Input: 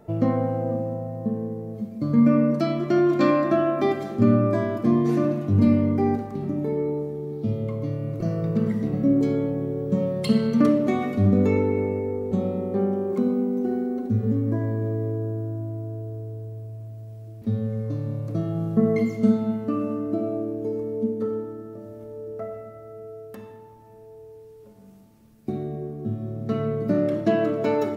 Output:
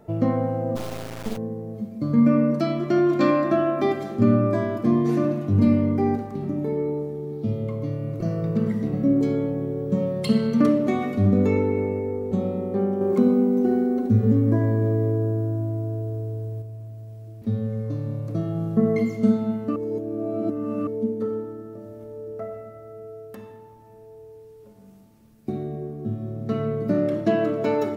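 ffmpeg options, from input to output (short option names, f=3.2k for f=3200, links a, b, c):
-filter_complex "[0:a]asplit=3[a][b][c];[a]afade=t=out:st=0.75:d=0.02[d];[b]acrusher=bits=3:dc=4:mix=0:aa=0.000001,afade=t=in:st=0.75:d=0.02,afade=t=out:st=1.36:d=0.02[e];[c]afade=t=in:st=1.36:d=0.02[f];[d][e][f]amix=inputs=3:normalize=0,asplit=5[g][h][i][j][k];[g]atrim=end=13.012[l];[h]atrim=start=13.008:end=16.622,asetpts=PTS-STARTPTS,volume=4.5dB[m];[i]atrim=start=16.618:end=19.762[n];[j]atrim=start=19.758:end=20.872,asetpts=PTS-STARTPTS,areverse[o];[k]atrim=start=20.868[p];[l][m]acrossfade=d=0.004:c1=hsin:c2=hsin[q];[q][n]acrossfade=d=0.004:c1=hsin:c2=hsin[r];[r][o]acrossfade=d=0.004:c1=hsin:c2=hsin[s];[s][p]acrossfade=d=0.004:c1=hsin:c2=hsin"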